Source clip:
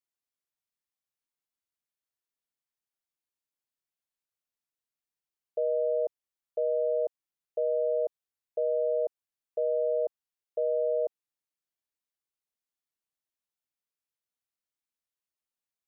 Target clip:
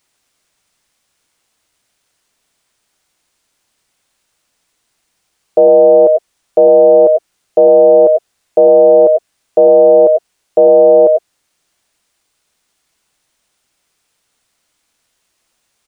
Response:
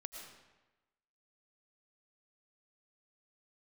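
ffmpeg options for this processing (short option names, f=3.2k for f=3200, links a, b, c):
-filter_complex "[1:a]atrim=start_sample=2205,afade=t=out:st=0.17:d=0.01,atrim=end_sample=7938,asetrate=48510,aresample=44100[a];[0:a][a]afir=irnorm=-1:irlink=0,aresample=22050,aresample=44100,apsyclip=35.5dB,acrusher=bits=10:mix=0:aa=0.000001,volume=-1.5dB"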